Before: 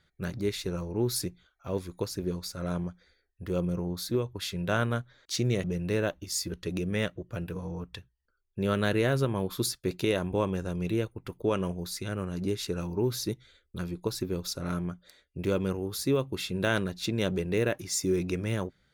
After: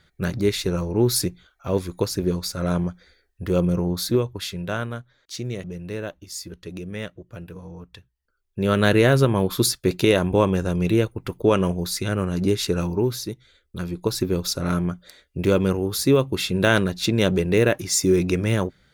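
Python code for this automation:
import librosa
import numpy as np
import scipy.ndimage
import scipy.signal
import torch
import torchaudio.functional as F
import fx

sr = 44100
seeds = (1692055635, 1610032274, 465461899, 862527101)

y = fx.gain(x, sr, db=fx.line((4.09, 9.0), (4.97, -2.5), (7.94, -2.5), (8.88, 9.5), (12.86, 9.5), (13.31, 0.5), (14.22, 9.0)))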